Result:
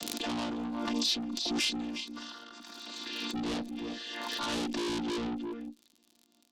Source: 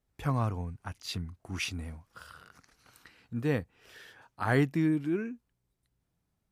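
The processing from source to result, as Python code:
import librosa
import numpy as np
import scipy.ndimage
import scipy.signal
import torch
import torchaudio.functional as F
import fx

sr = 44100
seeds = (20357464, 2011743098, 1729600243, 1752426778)

p1 = fx.chord_vocoder(x, sr, chord='major triad', root=58)
p2 = fx.fold_sine(p1, sr, drive_db=11, ceiling_db=-14.5)
p3 = p1 + F.gain(torch.from_numpy(p2), -8.0).numpy()
p4 = fx.peak_eq(p3, sr, hz=3900.0, db=7.0, octaves=1.2)
p5 = p4 + fx.echo_single(p4, sr, ms=355, db=-15.5, dry=0)
p6 = fx.dmg_crackle(p5, sr, seeds[0], per_s=59.0, level_db=-54.0)
p7 = fx.tube_stage(p6, sr, drive_db=34.0, bias=0.2)
p8 = fx.high_shelf_res(p7, sr, hz=2600.0, db=8.0, q=1.5)
p9 = fx.env_lowpass_down(p8, sr, base_hz=1200.0, full_db=-16.0)
p10 = fx.pre_swell(p9, sr, db_per_s=22.0)
y = F.gain(torch.from_numpy(p10), 1.5).numpy()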